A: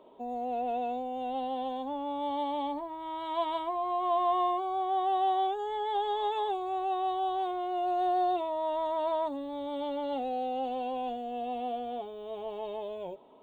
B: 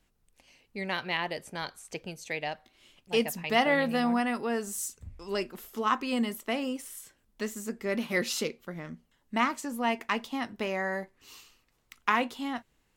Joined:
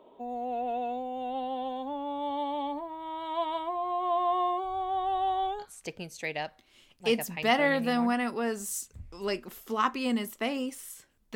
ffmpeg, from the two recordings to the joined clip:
ffmpeg -i cue0.wav -i cue1.wav -filter_complex "[0:a]asplit=3[link_01][link_02][link_03];[link_01]afade=type=out:start_time=4.63:duration=0.02[link_04];[link_02]asubboost=boost=8:cutoff=99,afade=type=in:start_time=4.63:duration=0.02,afade=type=out:start_time=5.66:duration=0.02[link_05];[link_03]afade=type=in:start_time=5.66:duration=0.02[link_06];[link_04][link_05][link_06]amix=inputs=3:normalize=0,apad=whole_dur=11.35,atrim=end=11.35,atrim=end=5.66,asetpts=PTS-STARTPTS[link_07];[1:a]atrim=start=1.65:end=7.42,asetpts=PTS-STARTPTS[link_08];[link_07][link_08]acrossfade=duration=0.08:curve1=tri:curve2=tri" out.wav

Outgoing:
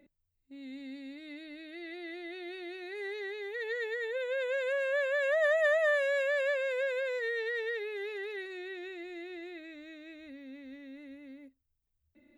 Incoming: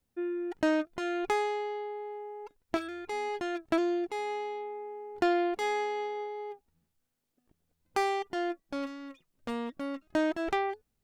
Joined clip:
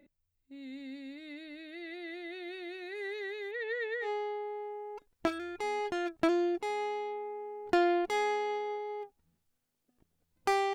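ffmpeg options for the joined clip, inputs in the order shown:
ffmpeg -i cue0.wav -i cue1.wav -filter_complex "[0:a]asettb=1/sr,asplit=3[link_01][link_02][link_03];[link_01]atrim=end=3.514[link_04];[link_02]atrim=start=3.51:end=4.09,asetpts=PTS-STARTPTS,afade=type=in:duration=0.004:curve=qsin,afade=type=out:start_time=0.576:duration=0.004:curve=qsin,lowpass=3900[link_05];[link_03]atrim=start=4.086[link_06];[link_04][link_05]acrossfade=duration=0.004:curve1=hsin:curve2=qsin[link_07];[link_07][link_06]acrossfade=duration=0.004:curve1=qsin:curve2=hsin,apad=whole_dur=10.74,atrim=end=10.74,atrim=end=4.09,asetpts=PTS-STARTPTS[link_08];[1:a]atrim=start=1.5:end=8.23,asetpts=PTS-STARTPTS[link_09];[link_08][link_09]acrossfade=duration=0.08:curve1=tri:curve2=tri" out.wav

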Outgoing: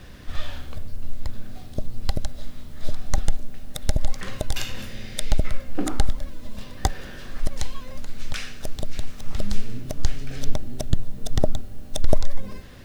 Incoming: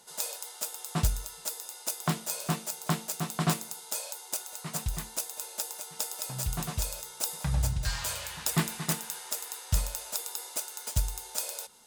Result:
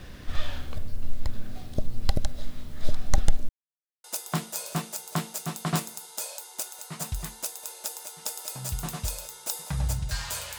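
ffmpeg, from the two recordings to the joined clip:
ffmpeg -i cue0.wav -i cue1.wav -filter_complex "[0:a]apad=whole_dur=10.58,atrim=end=10.58,asplit=2[link_01][link_02];[link_01]atrim=end=3.49,asetpts=PTS-STARTPTS,afade=type=out:start_time=3.486:duration=0.004:curve=hsin[link_03];[link_02]atrim=start=3.49:end=4.04,asetpts=PTS-STARTPTS,volume=0[link_04];[1:a]atrim=start=1.78:end=8.32,asetpts=PTS-STARTPTS,afade=type=in:duration=0.004:curve=hsin[link_05];[link_03][link_04][link_05]concat=n=3:v=0:a=1" out.wav

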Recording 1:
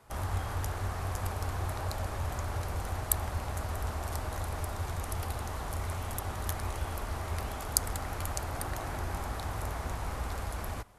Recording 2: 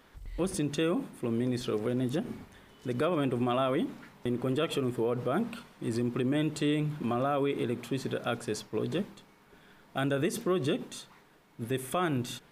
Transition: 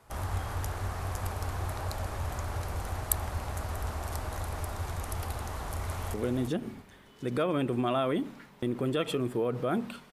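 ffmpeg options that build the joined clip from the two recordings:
ffmpeg -i cue0.wav -i cue1.wav -filter_complex "[0:a]apad=whole_dur=10.12,atrim=end=10.12,atrim=end=6.142[link_01];[1:a]atrim=start=1.768:end=5.75[link_02];[link_01][link_02]acrossfade=duration=0.004:curve1=hsin:curve2=hsin,asplit=2[link_03][link_04];[link_04]afade=type=in:start_time=5.54:duration=0.01,afade=type=out:start_time=6.14:duration=0.01,aecho=0:1:340|680:0.446684|0.0446684[link_05];[link_03][link_05]amix=inputs=2:normalize=0" out.wav

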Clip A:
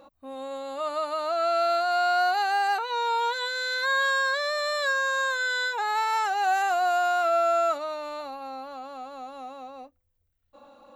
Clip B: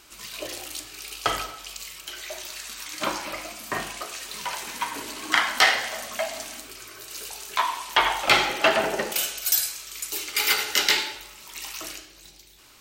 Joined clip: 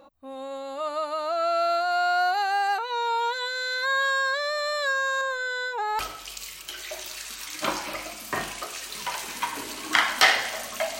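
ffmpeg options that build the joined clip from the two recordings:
ffmpeg -i cue0.wav -i cue1.wav -filter_complex "[0:a]asettb=1/sr,asplit=3[link_01][link_02][link_03];[link_01]atrim=end=5.214[link_04];[link_02]atrim=start=5.21:end=5.99,asetpts=PTS-STARTPTS,afade=type=in:duration=0.004:curve=qsin,afade=type=out:start_time=0.776:duration=0.004:curve=qsin,tiltshelf=frequency=860:gain=5.5[link_05];[link_03]atrim=start=5.986[link_06];[link_04][link_05]acrossfade=duration=0.004:curve1=hsin:curve2=qsin[link_07];[link_07][link_06]acrossfade=duration=0.004:curve1=qsin:curve2=hsin,apad=whole_dur=10.99,atrim=end=10.99,atrim=end=5.992[link_08];[1:a]atrim=start=1.378:end=6.38[link_09];[link_08][link_09]acrossfade=duration=0.004:curve1=hsin:curve2=hsin" out.wav

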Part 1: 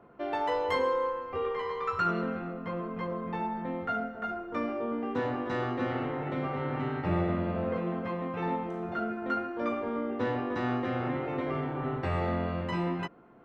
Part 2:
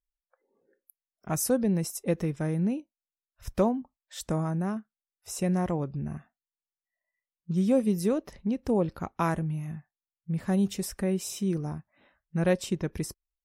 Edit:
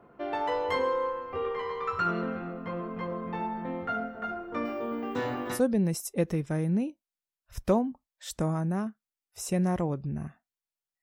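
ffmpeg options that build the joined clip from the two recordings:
ffmpeg -i cue0.wav -i cue1.wav -filter_complex "[0:a]asettb=1/sr,asplit=3[link_01][link_02][link_03];[link_01]atrim=end=4.654[link_04];[link_02]atrim=start=4.65:end=5.61,asetpts=PTS-STARTPTS,afade=type=in:duration=0.004:curve=qsin,afade=type=out:start_time=0.956:duration=0.004:curve=qsin,aemphasis=mode=production:type=75fm[link_05];[link_03]atrim=start=5.606[link_06];[link_04][link_05]acrossfade=duration=0.004:curve1=hsin:curve2=qsin[link_07];[link_07][link_06]acrossfade=duration=0.004:curve1=qsin:curve2=hsin,apad=whole_dur=11.02,atrim=end=11.02,atrim=end=5.61,asetpts=PTS-STARTPTS[link_08];[1:a]atrim=start=1.41:end=6.92,asetpts=PTS-STARTPTS[link_09];[link_08][link_09]acrossfade=duration=0.1:curve1=tri:curve2=tri" out.wav

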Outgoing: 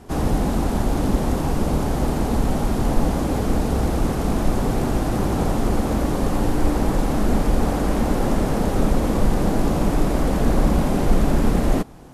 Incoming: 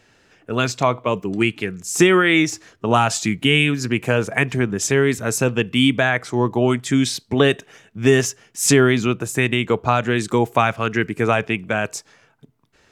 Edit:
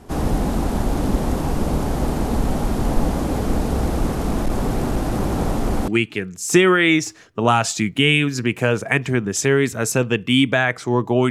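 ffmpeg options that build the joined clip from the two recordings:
ffmpeg -i cue0.wav -i cue1.wav -filter_complex "[0:a]asettb=1/sr,asplit=3[link_01][link_02][link_03];[link_01]atrim=end=4.074[link_04];[link_02]atrim=start=4.07:end=5.88,asetpts=PTS-STARTPTS,afade=type=in:duration=0.004:curve=qsin,afade=type=out:start_time=1.806:duration=0.004:curve=qsin,volume=14dB,asoftclip=hard,volume=-14dB[link_05];[link_03]atrim=start=5.876[link_06];[link_04][link_05]acrossfade=duration=0.004:curve1=hsin:curve2=qsin[link_07];[link_07][link_06]acrossfade=duration=0.004:curve1=qsin:curve2=hsin,apad=whole_dur=11.3,atrim=end=11.3,atrim=end=5.882[link_08];[1:a]atrim=start=1.338:end=6.76[link_09];[link_08][link_09]acrossfade=duration=0.004:curve1=hsin:curve2=hsin" out.wav

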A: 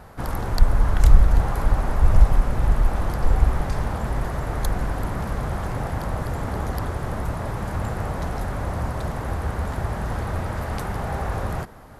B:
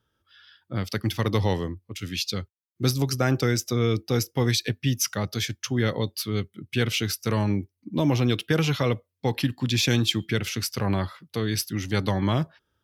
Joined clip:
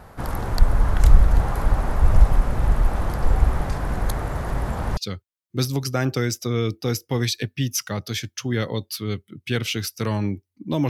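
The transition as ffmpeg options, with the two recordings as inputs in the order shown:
ffmpeg -i cue0.wav -i cue1.wav -filter_complex "[0:a]apad=whole_dur=10.89,atrim=end=10.89,asplit=2[link_01][link_02];[link_01]atrim=end=3.782[link_03];[link_02]atrim=start=3.778:end=4.972,asetpts=PTS-STARTPTS,areverse[link_04];[1:a]atrim=start=2.228:end=8.15[link_05];[link_03][link_04]acrossfade=duration=0.004:curve1=hsin:curve2=hsin[link_06];[link_06][link_05]acrossfade=duration=0.004:curve1=hsin:curve2=hsin" out.wav

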